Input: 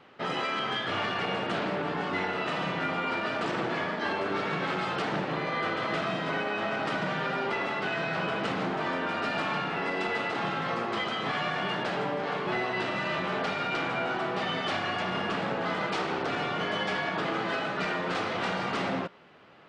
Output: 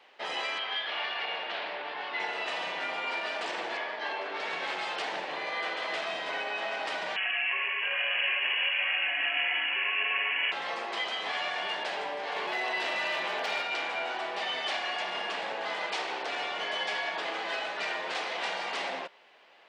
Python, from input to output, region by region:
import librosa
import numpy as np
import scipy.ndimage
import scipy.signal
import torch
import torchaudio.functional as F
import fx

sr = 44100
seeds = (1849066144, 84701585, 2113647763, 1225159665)

y = fx.chain(x, sr, fx.lowpass(hz=4400.0, slope=24),
    fx.low_shelf(hz=440.0, db=-8.0), at=(0.58, 2.2))
y = fx.chain(y, sr, fx.highpass(hz=230.0, slope=12),
    fx.overload_stage(gain_db=22.0),
    fx.air_absorb(metres=120.0), at=(3.77, 4.4))
y = fx.chain(y, sr, fx.freq_invert(carrier_hz=3100),
    fx.echo_single(ms=747, db=-5.5), at=(7.16, 10.52))
y = fx.chain(y, sr, fx.clip_hard(threshold_db=-22.5),
    fx.env_flatten(amount_pct=100), at=(12.36, 13.62))
y = scipy.signal.sosfilt(scipy.signal.butter(2, 740.0, 'highpass', fs=sr, output='sos'), y)
y = fx.peak_eq(y, sr, hz=1300.0, db=-10.5, octaves=0.49)
y = F.gain(torch.from_numpy(y), 2.0).numpy()